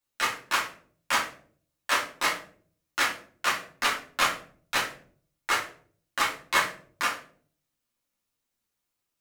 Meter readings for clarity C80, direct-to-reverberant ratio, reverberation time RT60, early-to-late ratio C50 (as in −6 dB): 13.0 dB, −5.0 dB, 0.50 s, 8.5 dB